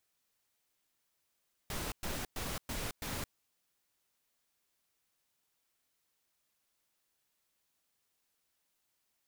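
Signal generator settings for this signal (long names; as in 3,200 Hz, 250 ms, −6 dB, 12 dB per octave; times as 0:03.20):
noise bursts pink, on 0.22 s, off 0.11 s, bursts 5, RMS −38.5 dBFS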